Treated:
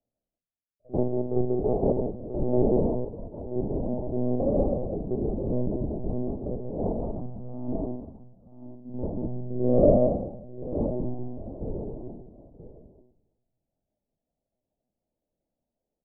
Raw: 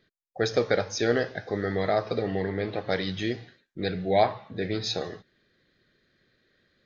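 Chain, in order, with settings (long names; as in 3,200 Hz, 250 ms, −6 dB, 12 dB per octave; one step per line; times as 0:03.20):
full-wave rectification
elliptic band-pass filter 220–1,500 Hz, stop band 40 dB
double-tracking delay 16 ms −13.5 dB
multi-tap delay 73/416 ms −3/−8.5 dB
rectangular room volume 1,900 cubic metres, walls furnished, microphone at 0.89 metres
one-pitch LPC vocoder at 8 kHz 290 Hz
wrong playback speed 78 rpm record played at 33 rpm
multiband upward and downward expander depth 40%
level +5 dB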